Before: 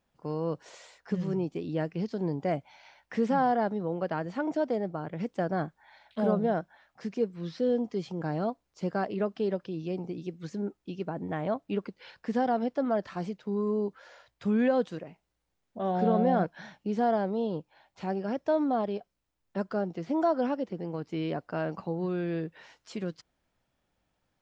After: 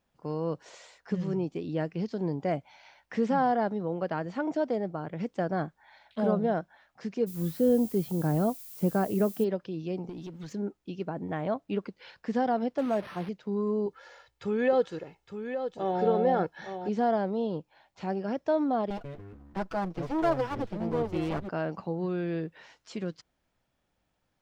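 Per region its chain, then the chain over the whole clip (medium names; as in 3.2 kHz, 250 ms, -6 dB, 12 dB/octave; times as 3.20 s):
7.26–9.43 s: tilt EQ -2.5 dB/octave + added noise violet -46 dBFS
10.09–10.53 s: peaking EQ 3.2 kHz +4 dB 0.37 oct + waveshaping leveller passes 2 + compression 10:1, threshold -37 dBFS
12.78–13.29 s: one-bit delta coder 32 kbps, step -37 dBFS + high-pass 90 Hz + decimation joined by straight lines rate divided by 6×
13.86–16.89 s: comb 2.3 ms, depth 55% + delay 863 ms -8.5 dB
18.90–21.49 s: comb filter that takes the minimum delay 6.1 ms + ever faster or slower copies 139 ms, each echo -6 st, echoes 3, each echo -6 dB
whole clip: none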